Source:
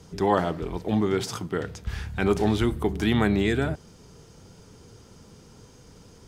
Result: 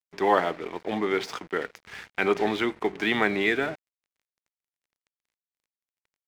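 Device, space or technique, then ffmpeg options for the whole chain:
pocket radio on a weak battery: -af "highpass=350,lowpass=4400,aeval=exprs='sgn(val(0))*max(abs(val(0))-0.00473,0)':channel_layout=same,equalizer=frequency=2100:width_type=o:width=0.58:gain=7,volume=2dB"

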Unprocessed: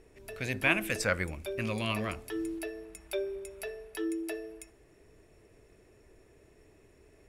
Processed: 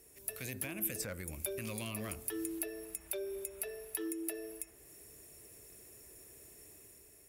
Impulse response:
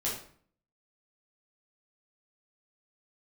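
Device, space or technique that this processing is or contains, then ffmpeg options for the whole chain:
FM broadcast chain: -filter_complex "[0:a]highpass=49,dynaudnorm=framelen=160:gausssize=7:maxgain=5dB,acrossover=split=530|3200[link_01][link_02][link_03];[link_01]acompressor=threshold=-31dB:ratio=4[link_04];[link_02]acompressor=threshold=-40dB:ratio=4[link_05];[link_03]acompressor=threshold=-54dB:ratio=4[link_06];[link_04][link_05][link_06]amix=inputs=3:normalize=0,aemphasis=mode=production:type=50fm,alimiter=level_in=0.5dB:limit=-24dB:level=0:latency=1:release=106,volume=-0.5dB,asoftclip=type=hard:threshold=-27dB,lowpass=frequency=15000:width=0.5412,lowpass=frequency=15000:width=1.3066,aemphasis=mode=production:type=50fm,volume=-6.5dB"

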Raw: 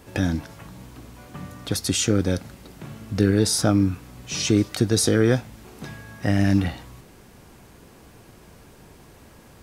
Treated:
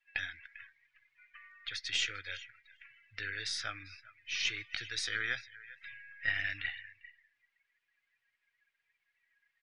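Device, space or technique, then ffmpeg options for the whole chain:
crystal radio: -filter_complex "[0:a]highpass=350,lowpass=2600,firequalizer=gain_entry='entry(110,0);entry(190,-26);entry(1900,12);entry(4300,10)':delay=0.05:min_phase=1,aeval=exprs='if(lt(val(0),0),0.708*val(0),val(0))':channel_layout=same,aecho=1:1:397|794:0.158|0.0317,asettb=1/sr,asplit=3[link_01][link_02][link_03];[link_01]atrim=end=5.864[link_04];[link_02]atrim=start=5.86:end=6.41,asetpts=PTS-STARTPTS,afade=type=in:duration=0.004:curve=qsin,afade=type=out:start_time=0.546:duration=0.004:curve=qsin,aecho=1:1:7.5:0.52,atrim=end_sample=24255[link_05];[link_03]atrim=start=6.406[link_06];[link_04][link_05]acrossfade=duration=0.004:curve1=hsin:curve2=qsin[link_07];[link_07][link_06]acrossfade=duration=0.004:curve1=qsin:curve2=hsin,afftdn=noise_reduction=24:noise_floor=-41,volume=-8dB"

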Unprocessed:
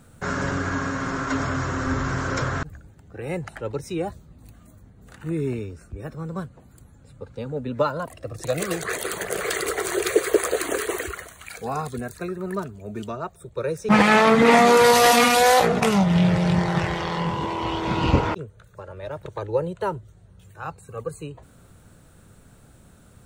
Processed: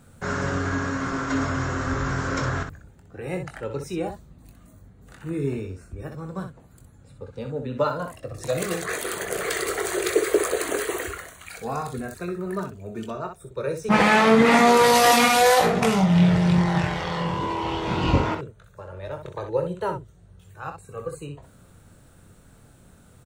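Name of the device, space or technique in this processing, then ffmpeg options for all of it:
slapback doubling: -filter_complex "[0:a]asplit=3[link_01][link_02][link_03];[link_02]adelay=22,volume=-8dB[link_04];[link_03]adelay=63,volume=-7.5dB[link_05];[link_01][link_04][link_05]amix=inputs=3:normalize=0,volume=-2dB"

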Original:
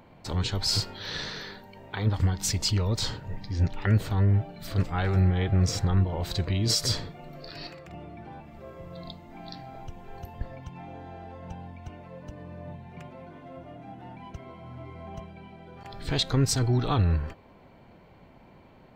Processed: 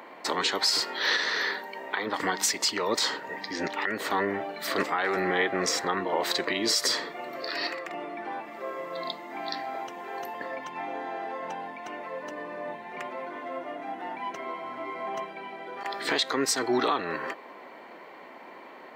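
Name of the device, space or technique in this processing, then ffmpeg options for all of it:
laptop speaker: -af "highpass=frequency=300:width=0.5412,highpass=frequency=300:width=1.3066,equalizer=frequency=1100:width_type=o:width=0.52:gain=6,equalizer=frequency=1900:width_type=o:width=0.33:gain=9.5,alimiter=limit=-23dB:level=0:latency=1:release=317,volume=8.5dB"

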